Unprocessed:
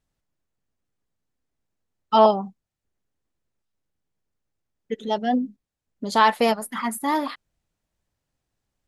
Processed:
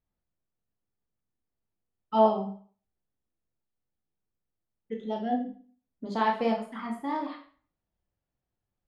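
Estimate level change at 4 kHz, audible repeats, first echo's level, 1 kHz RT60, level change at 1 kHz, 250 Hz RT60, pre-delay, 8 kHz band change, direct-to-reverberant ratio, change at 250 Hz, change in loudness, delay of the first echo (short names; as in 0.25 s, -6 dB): -13.5 dB, none, none, 0.45 s, -8.0 dB, 0.45 s, 18 ms, under -20 dB, 1.0 dB, -5.0 dB, -7.5 dB, none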